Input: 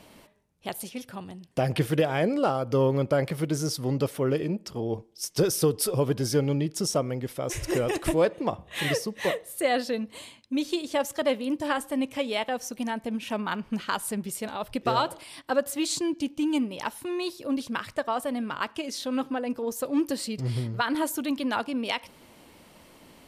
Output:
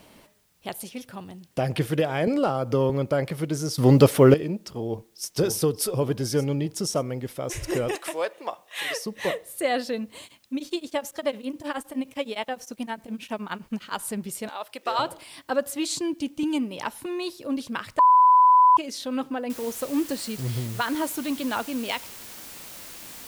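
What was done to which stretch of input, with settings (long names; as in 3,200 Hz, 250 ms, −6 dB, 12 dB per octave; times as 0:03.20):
0:02.27–0:02.90: multiband upward and downward compressor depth 70%
0:03.78–0:04.34: clip gain +11.5 dB
0:04.84–0:05.32: delay throw 580 ms, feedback 50%, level −6 dB
0:07.95–0:09.06: high-pass filter 670 Hz
0:10.24–0:13.99: tremolo along a rectified sine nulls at 9.7 Hz
0:14.49–0:14.99: high-pass filter 580 Hz
0:16.43–0:17.06: multiband upward and downward compressor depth 40%
0:17.99–0:18.77: beep over 1,000 Hz −12 dBFS
0:19.50: noise floor change −67 dB −42 dB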